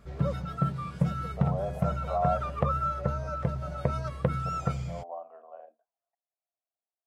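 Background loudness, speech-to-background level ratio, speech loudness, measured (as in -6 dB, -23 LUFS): -31.0 LUFS, -4.0 dB, -35.0 LUFS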